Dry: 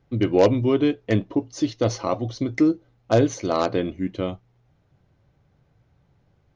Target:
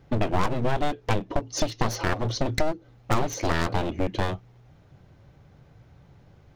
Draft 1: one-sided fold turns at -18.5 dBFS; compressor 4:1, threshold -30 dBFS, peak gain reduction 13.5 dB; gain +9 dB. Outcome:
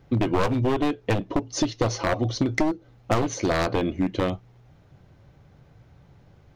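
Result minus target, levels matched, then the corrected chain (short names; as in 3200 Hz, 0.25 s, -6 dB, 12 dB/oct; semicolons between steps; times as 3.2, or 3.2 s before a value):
one-sided fold: distortion -17 dB
one-sided fold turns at -29.5 dBFS; compressor 4:1, threshold -30 dBFS, peak gain reduction 14.5 dB; gain +9 dB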